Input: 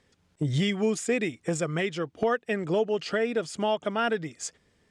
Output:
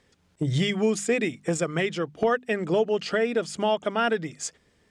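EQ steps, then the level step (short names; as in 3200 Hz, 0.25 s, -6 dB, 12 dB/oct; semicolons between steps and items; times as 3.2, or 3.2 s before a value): notches 50/100/150/200/250 Hz; +2.5 dB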